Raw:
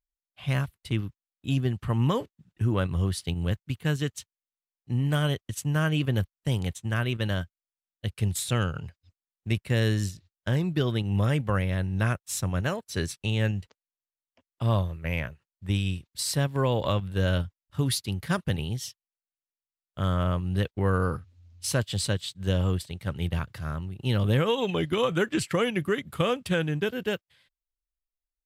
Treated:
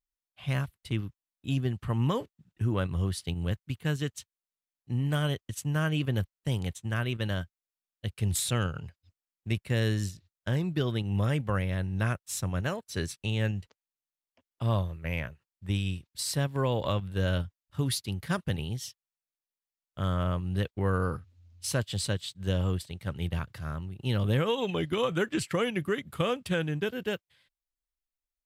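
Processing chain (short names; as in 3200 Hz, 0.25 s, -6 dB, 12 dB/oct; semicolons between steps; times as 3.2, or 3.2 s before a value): 8.19–8.67 sustainer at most 33 dB/s; gain -3 dB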